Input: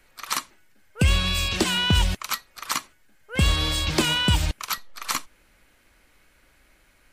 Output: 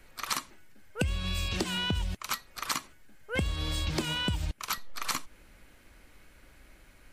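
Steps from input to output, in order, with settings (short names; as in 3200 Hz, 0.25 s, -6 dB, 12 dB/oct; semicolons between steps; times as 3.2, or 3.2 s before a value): low shelf 460 Hz +6 dB; compressor 16:1, threshold -27 dBFS, peak gain reduction 18.5 dB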